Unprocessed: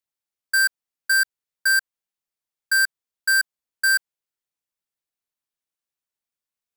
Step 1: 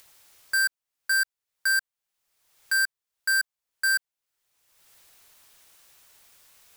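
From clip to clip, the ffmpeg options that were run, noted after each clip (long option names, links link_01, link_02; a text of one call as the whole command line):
ffmpeg -i in.wav -af "equalizer=frequency=230:width=0.97:gain=-7.5,alimiter=limit=-20dB:level=0:latency=1,acompressor=mode=upward:threshold=-31dB:ratio=2.5" out.wav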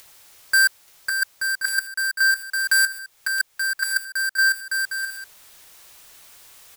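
ffmpeg -i in.wav -af "aecho=1:1:550|880|1078|1197|1268:0.631|0.398|0.251|0.158|0.1,volume=7dB" out.wav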